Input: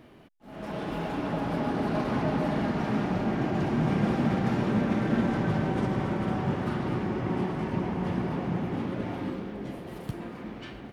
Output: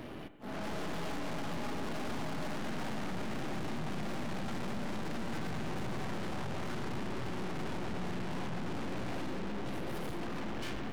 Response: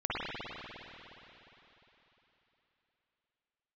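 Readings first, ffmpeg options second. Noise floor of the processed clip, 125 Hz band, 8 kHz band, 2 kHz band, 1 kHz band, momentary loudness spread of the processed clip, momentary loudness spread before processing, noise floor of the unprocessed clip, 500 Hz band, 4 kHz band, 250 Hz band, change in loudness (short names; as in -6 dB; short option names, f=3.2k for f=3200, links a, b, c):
-39 dBFS, -11.5 dB, n/a, -5.0 dB, -8.0 dB, 1 LU, 12 LU, -44 dBFS, -9.5 dB, -1.0 dB, -11.5 dB, -10.5 dB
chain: -filter_complex "[0:a]acompressor=threshold=-32dB:ratio=2,aeval=exprs='(tanh(355*val(0)+0.75)-tanh(0.75))/355':c=same,asplit=2[a][b];[1:a]atrim=start_sample=2205,afade=t=out:st=0.39:d=0.01,atrim=end_sample=17640[c];[b][c]afir=irnorm=-1:irlink=0,volume=-19dB[d];[a][d]amix=inputs=2:normalize=0,volume=11.5dB"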